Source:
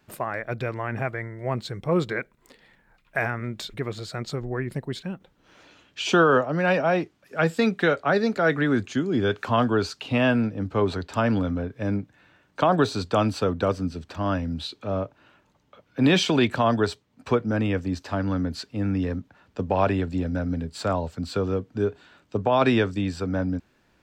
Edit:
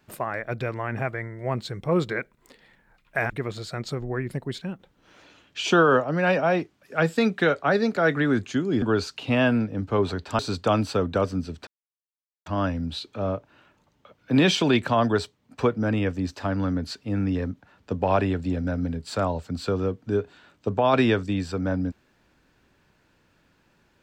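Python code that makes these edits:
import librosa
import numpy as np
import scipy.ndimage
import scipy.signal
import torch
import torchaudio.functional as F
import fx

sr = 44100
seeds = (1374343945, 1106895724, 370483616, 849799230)

y = fx.edit(x, sr, fx.cut(start_s=3.3, length_s=0.41),
    fx.cut(start_s=9.23, length_s=0.42),
    fx.cut(start_s=11.22, length_s=1.64),
    fx.insert_silence(at_s=14.14, length_s=0.79), tone=tone)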